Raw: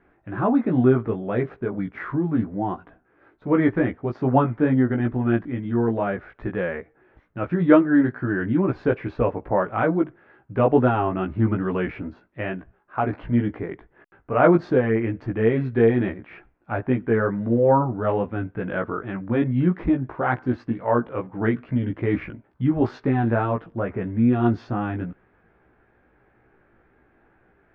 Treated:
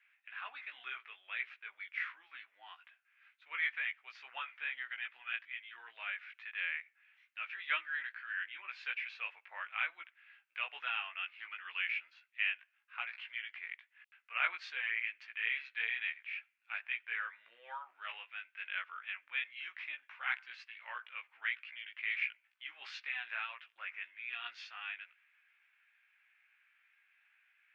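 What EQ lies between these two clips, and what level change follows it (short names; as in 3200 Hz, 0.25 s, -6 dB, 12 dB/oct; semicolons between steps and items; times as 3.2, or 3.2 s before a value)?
ladder high-pass 2200 Hz, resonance 55%; +8.5 dB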